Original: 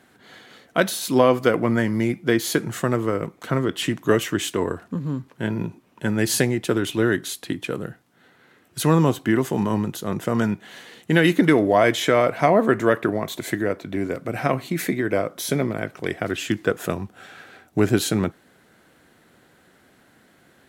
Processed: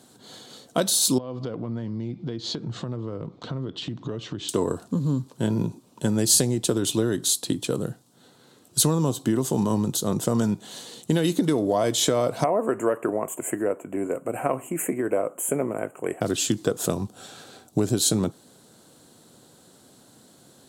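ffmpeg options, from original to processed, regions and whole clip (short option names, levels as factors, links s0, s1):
-filter_complex "[0:a]asettb=1/sr,asplit=3[s0][s1][s2];[s0]atrim=end=1.184[s3];[s1]atrim=start=1.18:end=4.49,asetpts=PTS-STARTPTS,afade=t=in:d=0.004:c=qsin,afade=t=out:st=3.306:d=0.004:c=qsin,lowpass=f=4200:w=0.5412,lowpass=f=4200:w=1.3066,lowshelf=f=140:g=10.5,acompressor=threshold=0.0251:ratio=5:attack=3.2:release=140:knee=1:detection=peak[s4];[s2]atrim=start=4.486[s5];[s3][s4]acrossfade=d=0.004:c1=hsin:c2=qsin[s6];[s6][s5]acrossfade=d=0.004:c1=qsin:c2=hsin,asettb=1/sr,asplit=3[s7][s8][s9];[s7]atrim=end=12.444[s10];[s8]atrim=start=12.44:end=16.21,asetpts=PTS-STARTPTS,afade=t=in:d=0.004:c=qsin,afade=t=out:st=3.766:d=0.004:c=qsin,asuperstop=centerf=4500:order=12:qfactor=1.1,bass=f=250:g=-14,treble=f=4000:g=-5[s11];[s9]atrim=start=16.206[s12];[s10][s11]acrossfade=d=0.004:c1=hsin:c2=qsin[s13];[s13][s12]acrossfade=d=0.004:c1=qsin:c2=hsin,equalizer=f=125:t=o:w=1:g=9,equalizer=f=250:t=o:w=1:g=6,equalizer=f=500:t=o:w=1:g=6,equalizer=f=1000:t=o:w=1:g=6,equalizer=f=2000:t=o:w=1:g=-10,equalizer=f=4000:t=o:w=1:g=10,equalizer=f=8000:t=o:w=1:g=11,acompressor=threshold=0.224:ratio=6,highshelf=f=6600:g=9,volume=0.531"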